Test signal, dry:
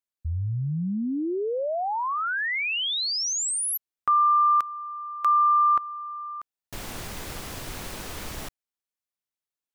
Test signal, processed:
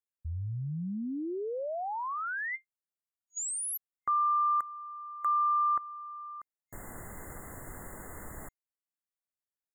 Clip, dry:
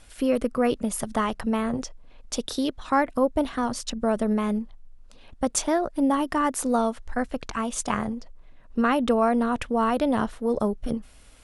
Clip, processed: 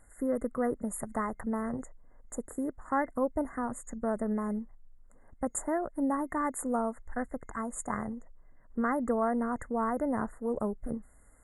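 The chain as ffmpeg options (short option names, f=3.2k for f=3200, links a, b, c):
-af "afftfilt=real='re*(1-between(b*sr/4096,2100,6700))':imag='im*(1-between(b*sr/4096,2100,6700))':win_size=4096:overlap=0.75,volume=-7.5dB"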